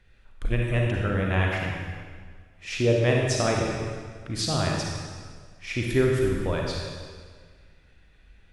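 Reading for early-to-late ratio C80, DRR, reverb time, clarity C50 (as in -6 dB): 2.0 dB, -1.0 dB, 1.8 s, 0.0 dB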